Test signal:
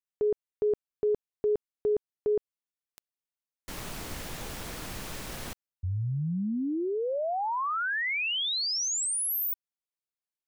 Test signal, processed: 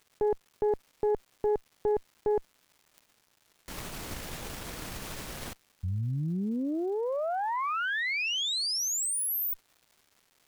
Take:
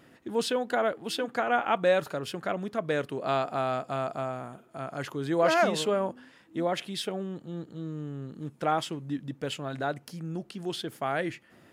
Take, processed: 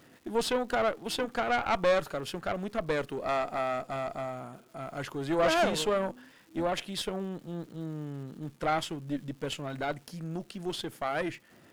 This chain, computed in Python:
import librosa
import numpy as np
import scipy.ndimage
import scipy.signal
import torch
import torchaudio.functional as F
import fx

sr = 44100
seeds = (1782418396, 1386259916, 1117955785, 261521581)

y = fx.tube_stage(x, sr, drive_db=23.0, bias=0.8)
y = fx.dmg_crackle(y, sr, seeds[0], per_s=470.0, level_db=-55.0)
y = y * 10.0 ** (4.0 / 20.0)